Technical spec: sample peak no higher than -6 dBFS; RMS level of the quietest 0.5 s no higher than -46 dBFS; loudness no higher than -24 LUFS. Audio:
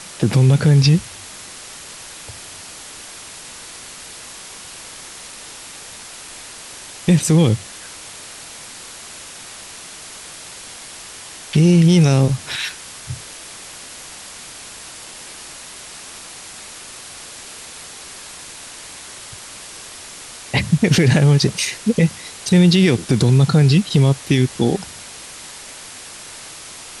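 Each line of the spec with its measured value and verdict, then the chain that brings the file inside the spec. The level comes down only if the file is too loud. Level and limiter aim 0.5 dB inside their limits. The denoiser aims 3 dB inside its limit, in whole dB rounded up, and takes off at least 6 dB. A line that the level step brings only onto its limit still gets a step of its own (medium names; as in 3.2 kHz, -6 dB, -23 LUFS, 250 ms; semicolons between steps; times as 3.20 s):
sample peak -4.5 dBFS: fail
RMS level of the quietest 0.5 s -36 dBFS: fail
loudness -15.5 LUFS: fail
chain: noise reduction 6 dB, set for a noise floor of -36 dBFS; trim -9 dB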